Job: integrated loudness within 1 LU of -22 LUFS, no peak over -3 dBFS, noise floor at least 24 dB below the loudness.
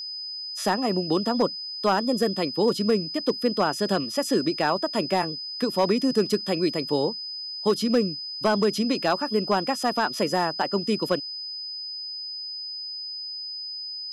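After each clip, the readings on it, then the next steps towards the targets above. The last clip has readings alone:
clipped 0.3%; flat tops at -13.0 dBFS; steady tone 5000 Hz; tone level -32 dBFS; loudness -25.5 LUFS; peak -13.0 dBFS; loudness target -22.0 LUFS
-> clip repair -13 dBFS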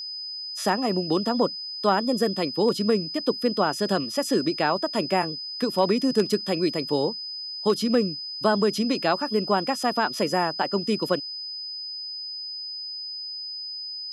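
clipped 0.0%; steady tone 5000 Hz; tone level -32 dBFS
-> notch 5000 Hz, Q 30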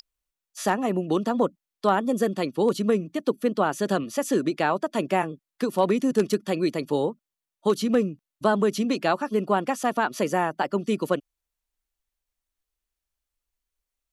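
steady tone none; loudness -25.5 LUFS; peak -7.0 dBFS; loudness target -22.0 LUFS
-> gain +3.5 dB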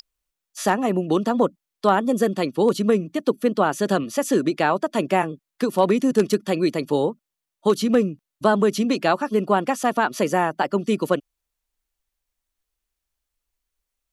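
loudness -22.0 LUFS; peak -3.5 dBFS; noise floor -85 dBFS

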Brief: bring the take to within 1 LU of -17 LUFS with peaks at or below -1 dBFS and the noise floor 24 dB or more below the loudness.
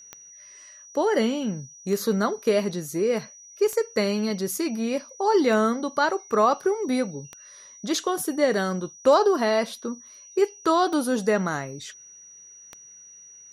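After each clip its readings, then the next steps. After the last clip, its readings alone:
clicks 8; steady tone 5800 Hz; tone level -45 dBFS; loudness -24.5 LUFS; peak -6.5 dBFS; loudness target -17.0 LUFS
-> de-click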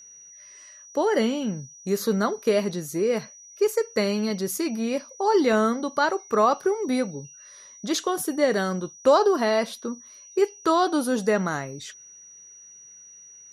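clicks 0; steady tone 5800 Hz; tone level -45 dBFS
-> notch 5800 Hz, Q 30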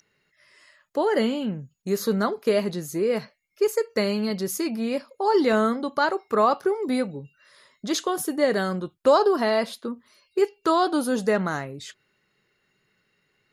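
steady tone none; loudness -24.5 LUFS; peak -6.5 dBFS; loudness target -17.0 LUFS
-> gain +7.5 dB; limiter -1 dBFS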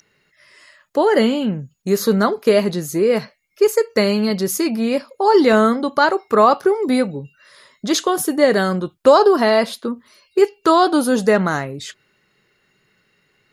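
loudness -17.0 LUFS; peak -1.0 dBFS; noise floor -64 dBFS

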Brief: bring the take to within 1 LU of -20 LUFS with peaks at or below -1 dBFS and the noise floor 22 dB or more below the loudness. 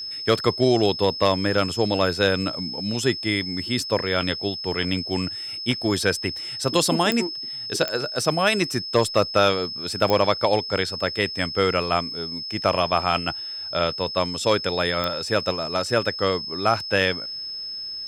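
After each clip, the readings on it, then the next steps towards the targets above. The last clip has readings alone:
clicks 4; steady tone 5200 Hz; tone level -30 dBFS; loudness -23.0 LUFS; peak -6.5 dBFS; loudness target -20.0 LUFS
-> de-click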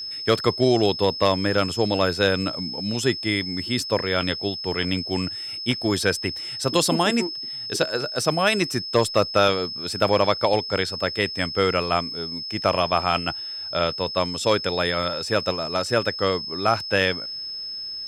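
clicks 0; steady tone 5200 Hz; tone level -30 dBFS
-> notch 5200 Hz, Q 30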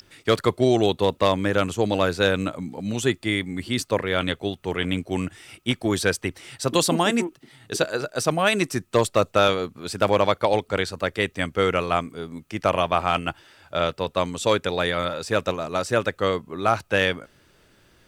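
steady tone none; loudness -23.5 LUFS; peak -7.0 dBFS; loudness target -20.0 LUFS
-> gain +3.5 dB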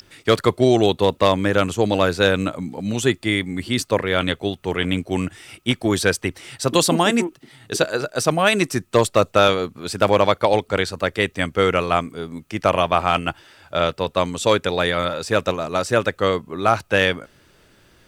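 loudness -20.0 LUFS; peak -3.5 dBFS; noise floor -55 dBFS

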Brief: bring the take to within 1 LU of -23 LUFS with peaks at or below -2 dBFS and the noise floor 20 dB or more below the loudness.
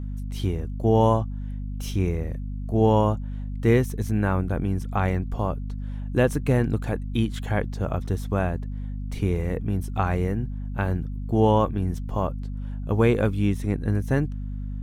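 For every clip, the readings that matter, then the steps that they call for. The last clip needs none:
hum 50 Hz; harmonics up to 250 Hz; hum level -29 dBFS; loudness -25.5 LUFS; peak -6.5 dBFS; loudness target -23.0 LUFS
-> notches 50/100/150/200/250 Hz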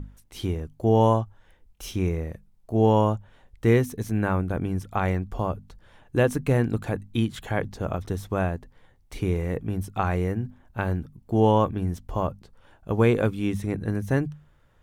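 hum none; loudness -26.0 LUFS; peak -6.5 dBFS; loudness target -23.0 LUFS
-> gain +3 dB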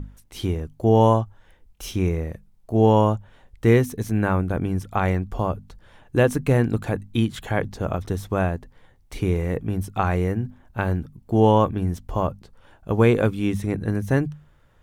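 loudness -23.0 LUFS; peak -3.5 dBFS; noise floor -56 dBFS

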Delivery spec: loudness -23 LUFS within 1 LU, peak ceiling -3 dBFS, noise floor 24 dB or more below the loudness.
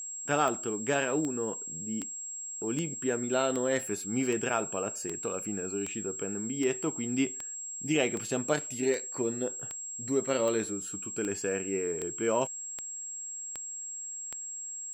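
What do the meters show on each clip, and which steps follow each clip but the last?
clicks 19; steady tone 7600 Hz; tone level -37 dBFS; loudness -31.5 LUFS; peak -12.5 dBFS; loudness target -23.0 LUFS
-> de-click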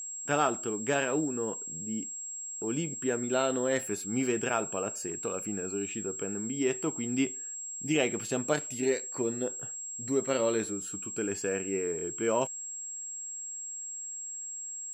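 clicks 0; steady tone 7600 Hz; tone level -37 dBFS
-> notch 7600 Hz, Q 30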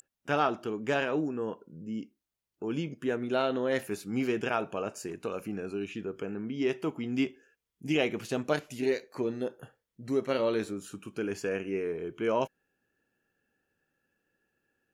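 steady tone none; loudness -32.5 LUFS; peak -13.0 dBFS; loudness target -23.0 LUFS
-> gain +9.5 dB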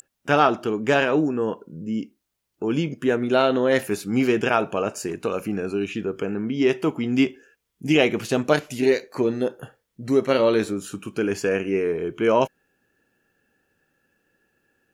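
loudness -23.0 LUFS; peak -3.5 dBFS; noise floor -78 dBFS

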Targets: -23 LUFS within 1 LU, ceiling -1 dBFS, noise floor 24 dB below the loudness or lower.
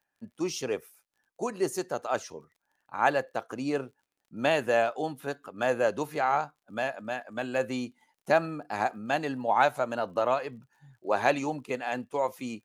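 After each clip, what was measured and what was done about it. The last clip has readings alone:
ticks 28/s; loudness -29.5 LUFS; peak -9.5 dBFS; loudness target -23.0 LUFS
-> de-click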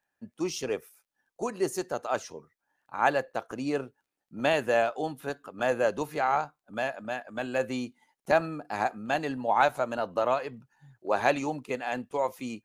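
ticks 0/s; loudness -30.0 LUFS; peak -9.5 dBFS; loudness target -23.0 LUFS
-> gain +7 dB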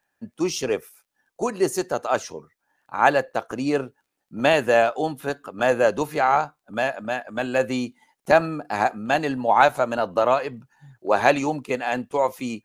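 loudness -23.0 LUFS; peak -2.5 dBFS; noise floor -79 dBFS

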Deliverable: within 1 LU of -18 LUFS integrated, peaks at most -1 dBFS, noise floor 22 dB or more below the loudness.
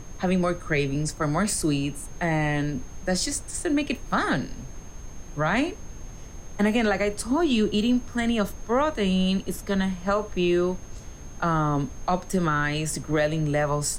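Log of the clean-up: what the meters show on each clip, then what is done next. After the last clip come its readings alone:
steady tone 6400 Hz; tone level -50 dBFS; noise floor -41 dBFS; noise floor target -48 dBFS; loudness -25.5 LUFS; peak -11.5 dBFS; loudness target -18.0 LUFS
-> notch 6400 Hz, Q 30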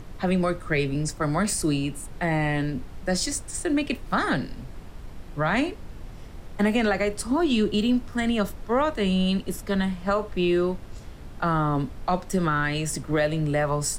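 steady tone none; noise floor -41 dBFS; noise floor target -48 dBFS
-> noise print and reduce 7 dB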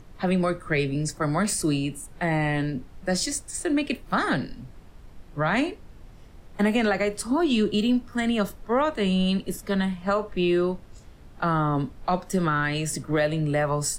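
noise floor -48 dBFS; loudness -25.5 LUFS; peak -11.0 dBFS; loudness target -18.0 LUFS
-> gain +7.5 dB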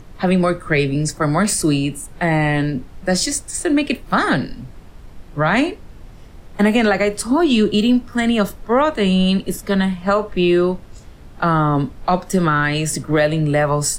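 loudness -18.0 LUFS; peak -3.5 dBFS; noise floor -40 dBFS

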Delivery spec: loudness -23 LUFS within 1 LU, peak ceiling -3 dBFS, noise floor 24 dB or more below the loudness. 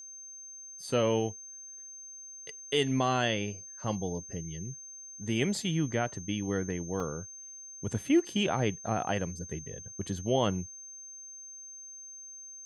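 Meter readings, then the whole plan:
dropouts 1; longest dropout 2.2 ms; steady tone 6300 Hz; tone level -44 dBFS; loudness -32.0 LUFS; peak -14.0 dBFS; loudness target -23.0 LUFS
-> interpolate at 7, 2.2 ms; notch 6300 Hz, Q 30; gain +9 dB

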